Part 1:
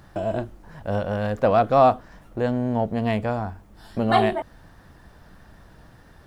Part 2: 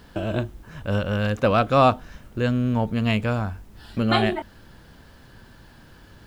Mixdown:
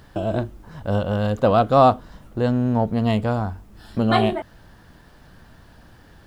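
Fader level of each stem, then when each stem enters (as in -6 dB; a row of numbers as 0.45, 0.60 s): -1.5, -4.0 dB; 0.00, 0.00 s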